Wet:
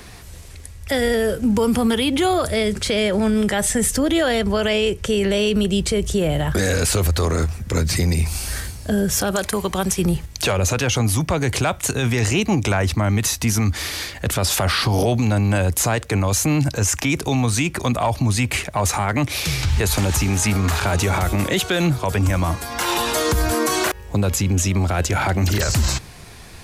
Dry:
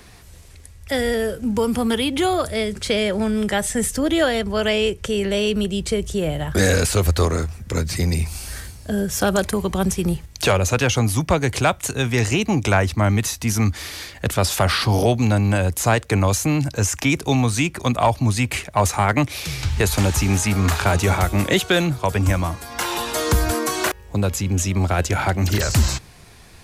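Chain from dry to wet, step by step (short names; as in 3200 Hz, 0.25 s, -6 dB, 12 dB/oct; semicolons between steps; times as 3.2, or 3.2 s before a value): 9.31–9.99 low shelf 450 Hz -9 dB; limiter -16.5 dBFS, peak gain reduction 10 dB; gain +5.5 dB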